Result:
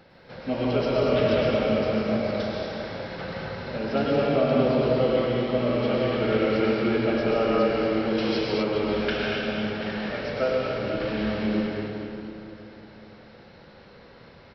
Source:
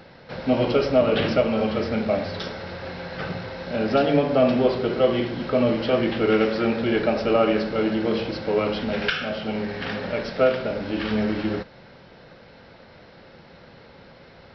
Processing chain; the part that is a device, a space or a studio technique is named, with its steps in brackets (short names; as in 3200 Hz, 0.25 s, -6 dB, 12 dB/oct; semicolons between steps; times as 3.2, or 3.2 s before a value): cave (echo 0.237 s -9.5 dB; reverb RT60 2.8 s, pre-delay 99 ms, DRR -4 dB); 8.18–8.63 high shelf 2900 Hz +11 dB; gain -7.5 dB